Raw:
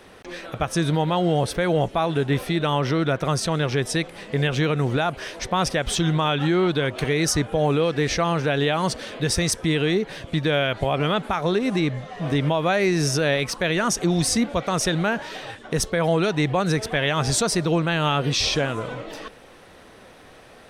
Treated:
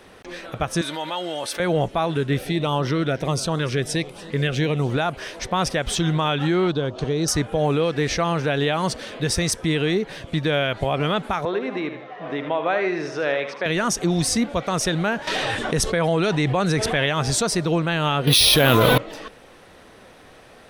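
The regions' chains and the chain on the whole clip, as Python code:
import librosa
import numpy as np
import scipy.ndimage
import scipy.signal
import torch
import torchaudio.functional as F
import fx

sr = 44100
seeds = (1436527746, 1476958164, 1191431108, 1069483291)

y = fx.chain(x, sr, fx.highpass(hz=1400.0, slope=6),
    fx.comb(ms=3.4, depth=0.42),
    fx.env_flatten(amount_pct=50), at=(0.81, 1.6))
y = fx.chain(y, sr, fx.echo_single(ms=291, db=-18.5),
    fx.filter_lfo_notch(shape='saw_up', hz=1.4, low_hz=650.0, high_hz=2500.0, q=2.0), at=(2.16, 4.9))
y = fx.chain(y, sr, fx.lowpass(hz=6800.0, slope=24),
    fx.peak_eq(hz=2100.0, db=-15.0, octaves=0.89), at=(6.71, 7.28))
y = fx.chain(y, sr, fx.bandpass_edges(low_hz=370.0, high_hz=2400.0),
    fx.echo_feedback(ms=77, feedback_pct=41, wet_db=-9.5), at=(11.45, 13.66))
y = fx.chain(y, sr, fx.cheby1_lowpass(hz=12000.0, order=8),
    fx.env_flatten(amount_pct=70), at=(15.27, 17.06))
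y = fx.chain(y, sr, fx.peak_eq(hz=3800.0, db=10.0, octaves=0.67),
    fx.resample_bad(factor=3, down='filtered', up='hold'),
    fx.env_flatten(amount_pct=100), at=(18.27, 18.98))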